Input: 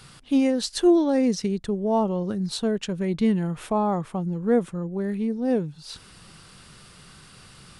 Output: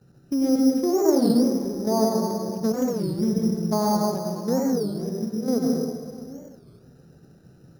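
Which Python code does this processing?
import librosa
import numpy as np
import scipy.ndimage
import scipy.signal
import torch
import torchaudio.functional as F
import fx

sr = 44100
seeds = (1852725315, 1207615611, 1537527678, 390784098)

y = fx.wiener(x, sr, points=41)
y = fx.highpass(y, sr, hz=320.0, slope=6)
y = fx.env_lowpass_down(y, sr, base_hz=1300.0, full_db=-24.0)
y = fx.low_shelf(y, sr, hz=460.0, db=9.0)
y = fx.hum_notches(y, sr, base_hz=50, count=9)
y = fx.level_steps(y, sr, step_db=11)
y = y + 10.0 ** (-19.0 / 20.0) * np.pad(y, (int(656 * sr / 1000.0), 0))[:len(y)]
y = fx.rev_plate(y, sr, seeds[0], rt60_s=1.7, hf_ratio=0.8, predelay_ms=80, drr_db=-2.0)
y = np.repeat(scipy.signal.resample_poly(y, 1, 8), 8)[:len(y)]
y = fx.record_warp(y, sr, rpm=33.33, depth_cents=250.0)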